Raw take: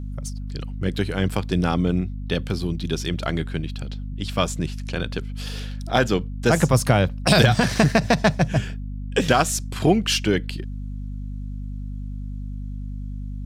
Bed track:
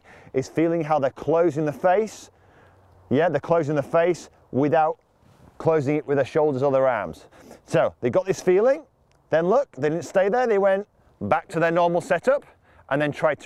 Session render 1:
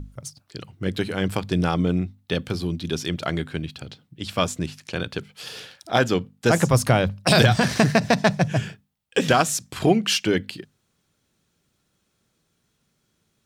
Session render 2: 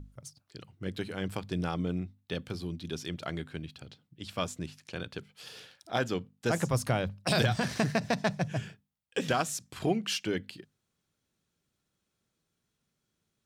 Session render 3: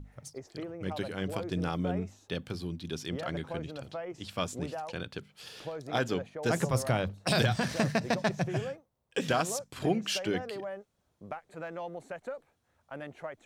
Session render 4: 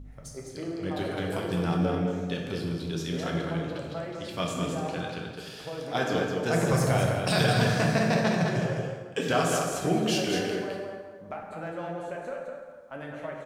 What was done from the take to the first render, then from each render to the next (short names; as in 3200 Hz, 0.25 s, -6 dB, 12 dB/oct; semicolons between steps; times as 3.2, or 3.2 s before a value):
notches 50/100/150/200/250 Hz
gain -10.5 dB
add bed track -19.5 dB
echo 0.209 s -5.5 dB; plate-style reverb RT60 1.5 s, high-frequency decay 0.65×, DRR -0.5 dB